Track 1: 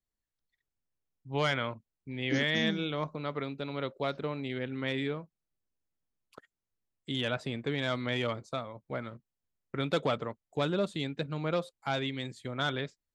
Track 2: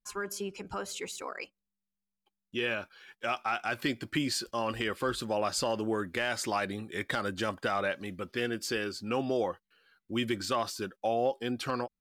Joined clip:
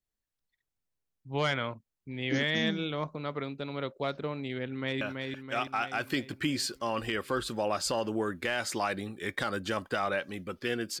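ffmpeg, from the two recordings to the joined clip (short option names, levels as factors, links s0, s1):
-filter_complex "[0:a]apad=whole_dur=11,atrim=end=11,atrim=end=5.012[s0];[1:a]atrim=start=2.728:end=8.72[s1];[s0][s1]acrossfade=d=0.004:c1=hsin:c2=hsin,asplit=2[s2][s3];[s3]afade=t=in:st=4.66:d=0.01,afade=t=out:st=5.01:d=0.01,aecho=0:1:330|660|990|1320|1650|1980|2310|2640|2970:0.630957|0.378574|0.227145|0.136287|0.0817721|0.0490632|0.0294379|0.0176628|0.0105977[s4];[s2][s4]amix=inputs=2:normalize=0"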